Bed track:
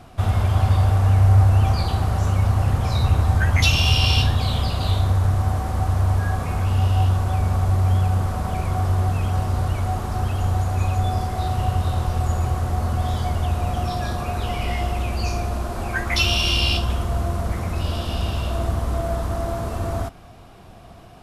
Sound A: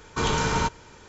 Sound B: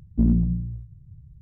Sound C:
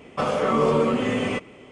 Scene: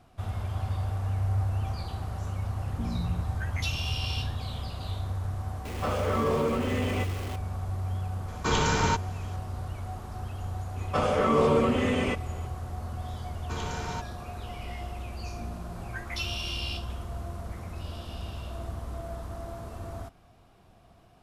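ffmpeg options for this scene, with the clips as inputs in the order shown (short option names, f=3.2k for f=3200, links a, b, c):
-filter_complex "[2:a]asplit=2[a][b];[3:a]asplit=2[c][d];[1:a]asplit=2[e][f];[0:a]volume=-13.5dB[g];[a]alimiter=limit=-16.5dB:level=0:latency=1:release=71[h];[c]aeval=exprs='val(0)+0.5*0.0376*sgn(val(0))':c=same[i];[b]acompressor=threshold=-32dB:ratio=6:attack=3.2:release=140:knee=1:detection=peak[j];[h]atrim=end=1.41,asetpts=PTS-STARTPTS,volume=-9.5dB,afade=t=in:d=0.004:c=hsin,afade=t=out:st=1.406:d=0.004:c=hsin,adelay=2610[k];[i]atrim=end=1.71,asetpts=PTS-STARTPTS,volume=-8dB,afade=t=in:d=0.004:c=hsin,afade=t=out:st=1.706:d=0.004:c=hsin,adelay=249165S[l];[e]atrim=end=1.08,asetpts=PTS-STARTPTS,volume=-1dB,afade=t=in:d=0.004:c=hsin,afade=t=out:st=1.076:d=0.004:c=hsin,adelay=8280[m];[d]atrim=end=1.71,asetpts=PTS-STARTPTS,volume=-2.5dB,afade=t=in:d=0.004:c=hsin,afade=t=out:st=1.706:d=0.004:c=hsin,adelay=10760[n];[f]atrim=end=1.08,asetpts=PTS-STARTPTS,volume=-12dB,afade=t=in:d=0.004:c=hsin,afade=t=out:st=1.076:d=0.004:c=hsin,adelay=13330[o];[j]atrim=end=1.41,asetpts=PTS-STARTPTS,volume=-8dB,afade=t=in:d=0.004:c=hsin,afade=t=out:st=1.406:d=0.004:c=hsin,adelay=15210[p];[g][k][l][m][n][o][p]amix=inputs=7:normalize=0"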